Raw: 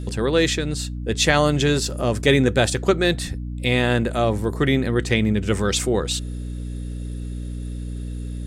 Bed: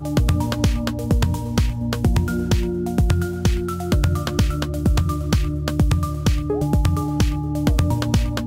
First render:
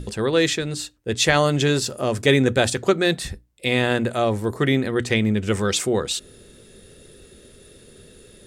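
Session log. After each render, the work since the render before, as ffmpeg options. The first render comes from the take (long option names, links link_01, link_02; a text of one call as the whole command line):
ffmpeg -i in.wav -af "bandreject=frequency=60:width_type=h:width=6,bandreject=frequency=120:width_type=h:width=6,bandreject=frequency=180:width_type=h:width=6,bandreject=frequency=240:width_type=h:width=6,bandreject=frequency=300:width_type=h:width=6" out.wav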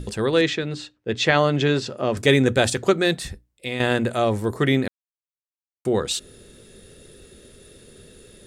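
ffmpeg -i in.wav -filter_complex "[0:a]asettb=1/sr,asplit=3[link_01][link_02][link_03];[link_01]atrim=end=0.414[link_04];[link_02]atrim=start=0.41:end=2.17,asetpts=PTS-STARTPTS,afade=type=in:duration=0.004:curve=qsin,afade=type=out:start_time=1.756:duration=0.004:curve=qsin,highpass=110,lowpass=3800[link_05];[link_03]atrim=start=2.166[link_06];[link_04][link_05]acrossfade=duration=0.004:curve1=hsin:curve2=qsin[link_07];[link_07][link_06]acrossfade=duration=0.004:curve1=qsin:curve2=hsin,asplit=4[link_08][link_09][link_10][link_11];[link_08]atrim=end=3.8,asetpts=PTS-STARTPTS,afade=type=out:start_time=2.98:duration=0.82:silence=0.354813[link_12];[link_09]atrim=start=3.8:end=4.88,asetpts=PTS-STARTPTS,afade=type=in:duration=0.004:curve=hsin:silence=0.354813,afade=type=out:start_time=1.076:duration=0.004:curve=hsin[link_13];[link_10]atrim=start=4.88:end=5.85,asetpts=PTS-STARTPTS,volume=0[link_14];[link_11]atrim=start=5.85,asetpts=PTS-STARTPTS,afade=type=in:duration=0.004:curve=hsin[link_15];[link_12][link_13][link_14][link_15]concat=n=4:v=0:a=1" out.wav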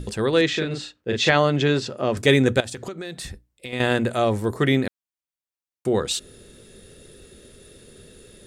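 ffmpeg -i in.wav -filter_complex "[0:a]asettb=1/sr,asplit=3[link_01][link_02][link_03];[link_01]atrim=end=0.504[link_04];[link_02]atrim=start=0.5:end=1.3,asetpts=PTS-STARTPTS,afade=type=in:duration=0.004:curve=qsin,afade=type=out:start_time=0.796:duration=0.004:curve=qsin,asplit=2[link_05][link_06];[link_06]adelay=38,volume=-3dB[link_07];[link_05][link_07]amix=inputs=2:normalize=0,atrim=end_sample=35280[link_08];[link_03]atrim=start=1.296[link_09];[link_04][link_08]acrossfade=duration=0.004:curve1=hsin:curve2=qsin[link_10];[link_10][link_09]acrossfade=duration=0.004:curve1=qsin:curve2=hsin,asettb=1/sr,asplit=3[link_11][link_12][link_13];[link_11]atrim=end=2.604[link_14];[link_12]atrim=start=2.6:end=3.73,asetpts=PTS-STARTPTS,afade=type=in:duration=0.004:curve=qsin,afade=type=out:start_time=1.126:duration=0.004:curve=qsin,acompressor=threshold=-29dB:ratio=12:attack=3.2:release=140:knee=1:detection=peak[link_15];[link_13]atrim=start=3.726[link_16];[link_14][link_15]acrossfade=duration=0.004:curve1=hsin:curve2=qsin[link_17];[link_17][link_16]acrossfade=duration=0.004:curve1=qsin:curve2=hsin" out.wav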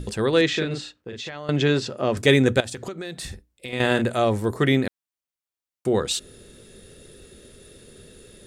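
ffmpeg -i in.wav -filter_complex "[0:a]asettb=1/sr,asplit=3[link_01][link_02][link_03];[link_01]atrim=end=0.804[link_04];[link_02]atrim=start=0.8:end=1.49,asetpts=PTS-STARTPTS,afade=type=in:duration=0.004:curve=qsin,afade=type=out:start_time=0.686:duration=0.004:curve=qsin,acompressor=threshold=-32dB:ratio=6:attack=3.2:release=140:knee=1:detection=peak[link_05];[link_03]atrim=start=1.486[link_06];[link_04][link_05]acrossfade=duration=0.004:curve1=hsin:curve2=qsin[link_07];[link_07][link_06]acrossfade=duration=0.004:curve1=qsin:curve2=hsin,asettb=1/sr,asplit=3[link_08][link_09][link_10];[link_08]atrim=end=3.164[link_11];[link_09]atrim=start=3.16:end=4.02,asetpts=PTS-STARTPTS,afade=type=in:duration=0.004:curve=qsin,afade=type=out:start_time=0.856:duration=0.004:curve=qsin,asplit=2[link_12][link_13];[link_13]adelay=46,volume=-10dB[link_14];[link_12][link_14]amix=inputs=2:normalize=0,atrim=end_sample=37926[link_15];[link_10]atrim=start=4.016[link_16];[link_11][link_15]acrossfade=duration=0.004:curve1=hsin:curve2=qsin[link_17];[link_17][link_16]acrossfade=duration=0.004:curve1=qsin:curve2=hsin" out.wav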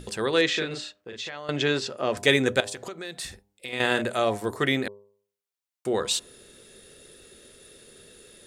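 ffmpeg -i in.wav -af "lowshelf=frequency=290:gain=-12,bandreject=frequency=101:width_type=h:width=4,bandreject=frequency=202:width_type=h:width=4,bandreject=frequency=303:width_type=h:width=4,bandreject=frequency=404:width_type=h:width=4,bandreject=frequency=505:width_type=h:width=4,bandreject=frequency=606:width_type=h:width=4,bandreject=frequency=707:width_type=h:width=4,bandreject=frequency=808:width_type=h:width=4,bandreject=frequency=909:width_type=h:width=4,bandreject=frequency=1010:width_type=h:width=4,bandreject=frequency=1111:width_type=h:width=4" out.wav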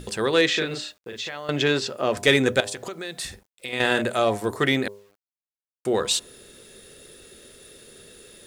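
ffmpeg -i in.wav -filter_complex "[0:a]asplit=2[link_01][link_02];[link_02]asoftclip=type=hard:threshold=-17.5dB,volume=-7.5dB[link_03];[link_01][link_03]amix=inputs=2:normalize=0,acrusher=bits=9:mix=0:aa=0.000001" out.wav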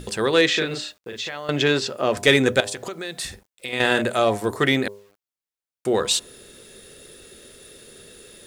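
ffmpeg -i in.wav -af "volume=2dB" out.wav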